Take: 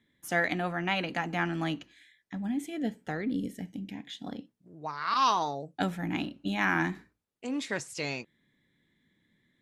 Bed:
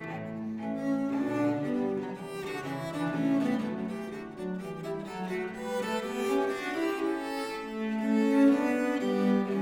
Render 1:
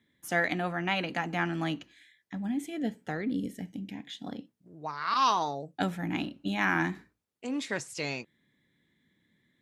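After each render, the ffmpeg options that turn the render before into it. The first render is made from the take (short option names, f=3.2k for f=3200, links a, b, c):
-af "highpass=50"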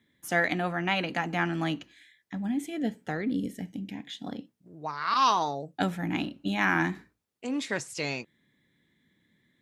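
-af "volume=2dB"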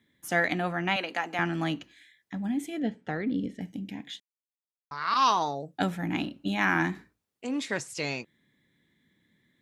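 -filter_complex "[0:a]asettb=1/sr,asplit=3[a][b][c];[a]atrim=end=0.964[d];[b]atrim=start=0.96:end=1.39,asetpts=PTS-STARTPTS,afade=t=in:d=0.004:c=qsin,afade=t=out:st=0.426:d=0.004:c=qsin,highpass=410[e];[c]atrim=start=1.386[f];[d][e]acrossfade=d=0.004:c1=hsin:c2=qsin[g];[g][f]acrossfade=d=0.004:c1=qsin:c2=hsin,asettb=1/sr,asplit=3[h][i][j];[h]atrim=end=2.804[k];[i]atrim=start=2.8:end=3.61,asetpts=PTS-STARTPTS,afade=t=in:d=0.004:c=qsin,afade=t=out:st=0.806:d=0.004:c=qsin,lowpass=4.1k[l];[j]atrim=start=3.606[m];[k][l]acrossfade=d=0.004:c1=hsin:c2=qsin[n];[n][m]acrossfade=d=0.004:c1=qsin:c2=hsin,asplit=3[o][p][q];[o]atrim=end=4.2,asetpts=PTS-STARTPTS,afade=t=out:st=4.196:d=0.004:c=hsin[r];[p]atrim=start=4.2:end=4.91,asetpts=PTS-STARTPTS,volume=0[s];[q]atrim=start=4.91,asetpts=PTS-STARTPTS,afade=t=in:d=0.004:c=hsin[t];[r][s][t]concat=n=3:v=0:a=1"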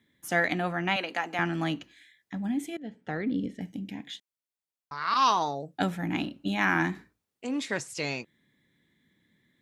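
-filter_complex "[0:a]asplit=2[a][b];[a]atrim=end=2.77,asetpts=PTS-STARTPTS,afade=t=out:st=2.766:d=0.004:c=hsin:silence=0.112202[c];[b]atrim=start=2.77,asetpts=PTS-STARTPTS,afade=t=in:d=0.4:silence=0.112202[d];[c][d]concat=n=2:v=0:a=1"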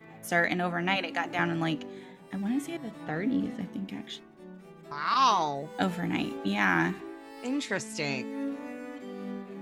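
-filter_complex "[1:a]volume=-12dB[a];[0:a][a]amix=inputs=2:normalize=0"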